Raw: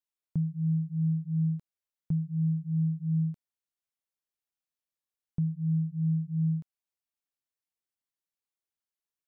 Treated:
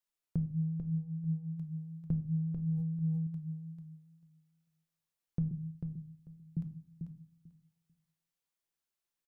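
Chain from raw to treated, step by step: 5.51–6.57 Chebyshev high-pass 380 Hz, order 3; compressor 8:1, threshold -32 dBFS, peak gain reduction 7.5 dB; feedback echo 0.443 s, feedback 17%, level -6.5 dB; shoebox room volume 430 m³, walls furnished, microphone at 0.79 m; 2.4–3.27 sustainer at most 21 dB/s; gain +1 dB

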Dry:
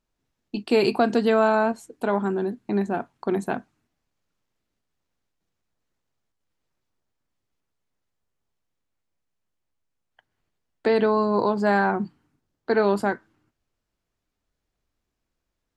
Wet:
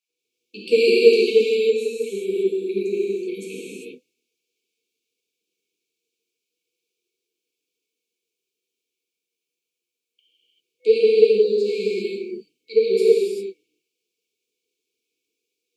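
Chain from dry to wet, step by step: LFO high-pass sine 6.4 Hz 430–1900 Hz; FFT band-reject 500–2200 Hz; non-linear reverb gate 0.42 s flat, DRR -7.5 dB; gain -1.5 dB

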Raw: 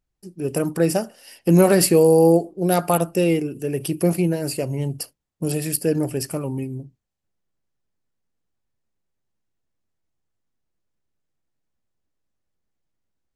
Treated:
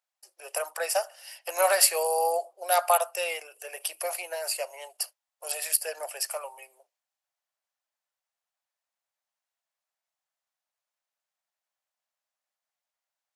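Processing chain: steep high-pass 600 Hz 48 dB/oct

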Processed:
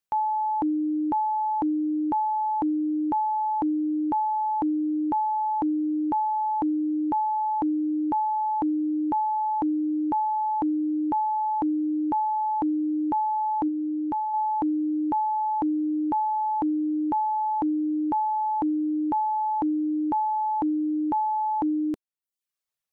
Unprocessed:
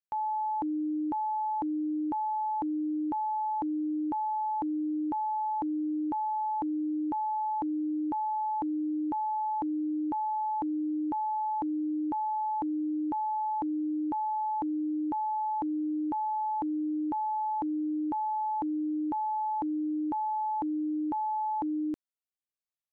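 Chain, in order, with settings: 13.68–14.34 bell 560 Hz -4 dB 1.8 oct; reverb removal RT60 0.66 s; gain +7.5 dB

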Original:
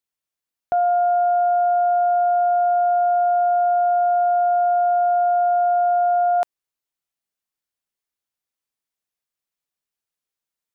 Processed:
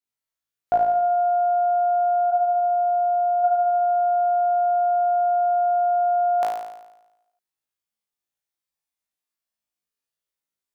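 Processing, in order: spectral noise reduction 8 dB; 2.3–3.43 LPF 1200 Hz -> 1100 Hz 12 dB/oct; flutter echo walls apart 3.1 m, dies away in 0.96 s

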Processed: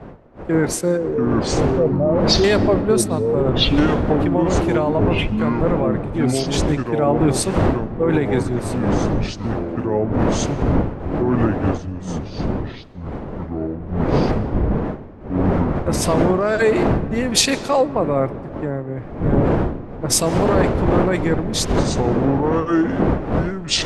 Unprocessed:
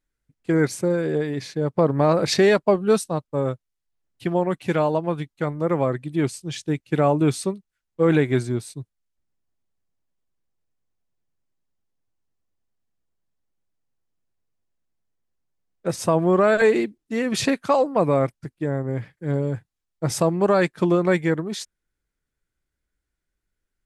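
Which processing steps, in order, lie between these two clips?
0.97–2.44 spectral contrast raised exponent 2.4; wind noise 490 Hz -25 dBFS; in parallel at -2.5 dB: compressor, threshold -28 dBFS, peak gain reduction 17.5 dB; on the sum: echoes that change speed 0.524 s, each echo -5 st, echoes 2; on a send at -17 dB: reverb RT60 2.5 s, pre-delay 0.11 s; on the sum: maximiser +8 dB; three-band expander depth 100%; gain -7 dB

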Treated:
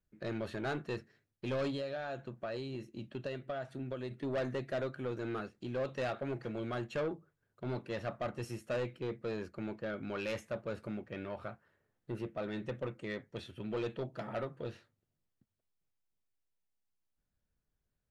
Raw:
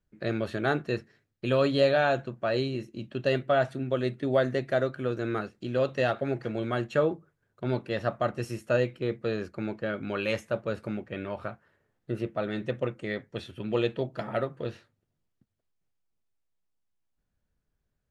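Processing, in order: 1.7–4.11 compressor 10:1, threshold -29 dBFS, peak gain reduction 11.5 dB; soft clip -25 dBFS, distortion -11 dB; gain -5.5 dB

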